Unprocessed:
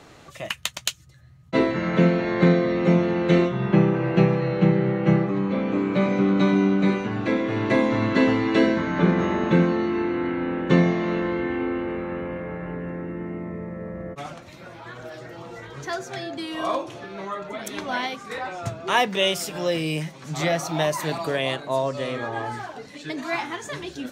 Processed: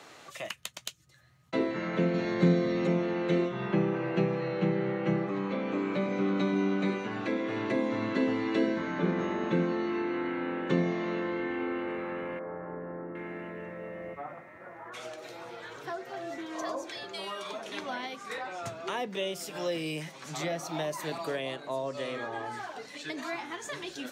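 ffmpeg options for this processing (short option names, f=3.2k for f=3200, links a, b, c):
-filter_complex "[0:a]asettb=1/sr,asplit=3[a][b][c];[a]atrim=end=2.144[d];[b]atrim=start=2.14:end=2.87,asetpts=PTS-STARTPTS,afade=t=in:d=0.004:c=qsin,afade=t=out:st=0.726:d=0.004:c=qsin,bass=f=250:g=7,treble=f=4k:g=10[e];[c]atrim=start=2.866[f];[d][e]acrossfade=d=0.004:c1=hsin:c2=qsin[g];[g][f]acrossfade=d=0.004:c1=qsin:c2=hsin,asettb=1/sr,asplit=3[h][i][j];[h]atrim=end=12.394[k];[i]atrim=start=12.39:end=17.72,asetpts=PTS-STARTPTS,afade=t=in:d=0.004:c=qsin,afade=t=out:st=5.326:d=0.004:c=qsin,acrossover=split=170|1500[l][m][n];[l]adelay=70[o];[n]adelay=760[p];[o][m][p]amix=inputs=3:normalize=0,atrim=end_sample=235053[q];[j]atrim=start=17.716[r];[k][q]acrossfade=d=0.004:c1=hsin:c2=qsin[s];[s][r]acrossfade=d=0.004:c1=qsin:c2=hsin,highpass=f=210:p=1,lowshelf=f=400:g=-8.5,acrossover=split=470[t][u];[u]acompressor=threshold=-36dB:ratio=6[v];[t][v]amix=inputs=2:normalize=0"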